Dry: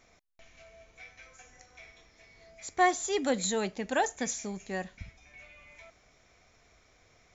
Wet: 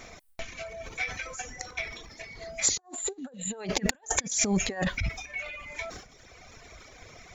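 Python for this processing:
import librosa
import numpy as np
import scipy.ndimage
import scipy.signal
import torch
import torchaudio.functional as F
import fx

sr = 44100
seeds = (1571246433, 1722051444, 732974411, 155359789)

y = fx.spec_repair(x, sr, seeds[0], start_s=2.71, length_s=0.82, low_hz=1800.0, high_hz=6900.0, source='both')
y = fx.transient(y, sr, attack_db=5, sustain_db=9)
y = fx.over_compress(y, sr, threshold_db=-37.0, ratio=-0.5)
y = fx.dereverb_blind(y, sr, rt60_s=1.4)
y = np.clip(y, -10.0 ** (-16.0 / 20.0), 10.0 ** (-16.0 / 20.0))
y = y * 10.0 ** (8.0 / 20.0)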